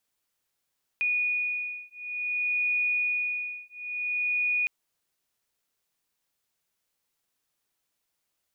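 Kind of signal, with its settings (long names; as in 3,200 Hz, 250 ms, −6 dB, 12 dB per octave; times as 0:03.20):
two tones that beat 2,460 Hz, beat 0.56 Hz, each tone −29 dBFS 3.66 s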